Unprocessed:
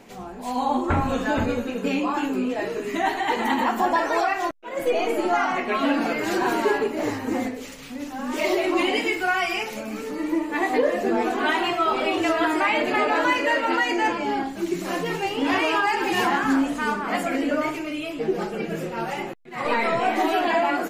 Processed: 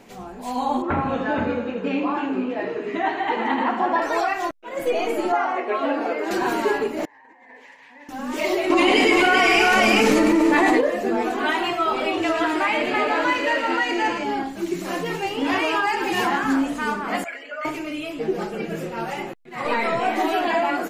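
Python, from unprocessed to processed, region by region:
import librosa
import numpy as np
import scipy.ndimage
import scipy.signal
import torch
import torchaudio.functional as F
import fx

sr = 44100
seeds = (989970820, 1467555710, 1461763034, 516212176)

y = fx.chain(x, sr, fx.bandpass_edges(low_hz=120.0, high_hz=2900.0),
    fx.echo_feedback(ms=81, feedback_pct=57, wet_db=-10.5), at=(0.82, 4.02))
y = fx.chain(y, sr, fx.highpass(hz=390.0, slope=24),
    fx.tilt_eq(slope=-4.0), at=(5.32, 6.31))
y = fx.chain(y, sr, fx.double_bandpass(hz=1300.0, octaves=0.87),
    fx.over_compress(threshold_db=-48.0, ratio=-1.0), at=(7.05, 8.09))
y = fx.chain(y, sr, fx.lowpass(hz=11000.0, slope=12),
    fx.echo_multitap(ms=(107, 391), db=(-5.5, -3.5)),
    fx.env_flatten(amount_pct=100), at=(8.7, 10.81))
y = fx.chain(y, sr, fx.high_shelf(hz=8500.0, db=-8.0),
    fx.echo_wet_highpass(ms=114, feedback_pct=62, hz=2700.0, wet_db=-4), at=(12.11, 14.24))
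y = fx.chain(y, sr, fx.envelope_sharpen(power=1.5),
    fx.highpass(hz=1300.0, slope=12),
    fx.comb(ms=4.8, depth=0.79), at=(17.24, 17.65))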